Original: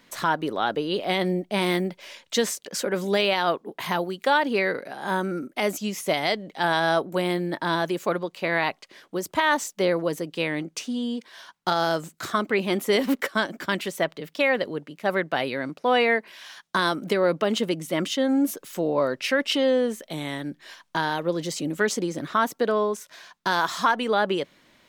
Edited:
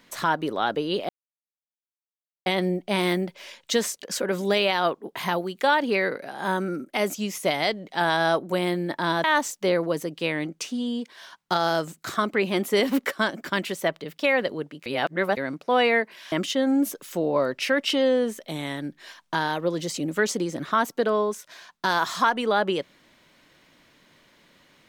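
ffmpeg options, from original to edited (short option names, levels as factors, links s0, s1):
-filter_complex "[0:a]asplit=6[s0][s1][s2][s3][s4][s5];[s0]atrim=end=1.09,asetpts=PTS-STARTPTS,afade=t=out:st=1.086:d=0.004:c=hsin,apad=pad_dur=1.37[s6];[s1]atrim=start=1.09:end=7.872,asetpts=PTS-STARTPTS,afade=t=in:d=0.004:c=hsin[s7];[s2]atrim=start=9.398:end=15.022[s8];[s3]atrim=start=15.018:end=15.532,asetpts=PTS-STARTPTS,areverse[s9];[s4]atrim=start=15.528:end=16.482[s10];[s5]atrim=start=17.938[s11];[s6][s7]concat=n=2:v=0:a=1[s12];[s12][s8]acrossfade=d=0.004:c1=hsin:c2=hsin[s13];[s13][s9]acrossfade=d=0.004:c1=hsin:c2=hsin[s14];[s14][s10]acrossfade=d=0.004:c1=hsin:c2=hsin[s15];[s15][s11]acrossfade=d=0.004:c1=hsin:c2=hsin"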